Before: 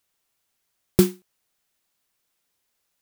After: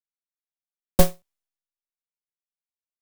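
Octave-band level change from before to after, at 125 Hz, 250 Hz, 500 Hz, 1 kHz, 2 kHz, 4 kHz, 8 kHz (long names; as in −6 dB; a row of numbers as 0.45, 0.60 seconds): −1.0, −5.5, 0.0, +11.0, +3.0, +1.0, +1.5 decibels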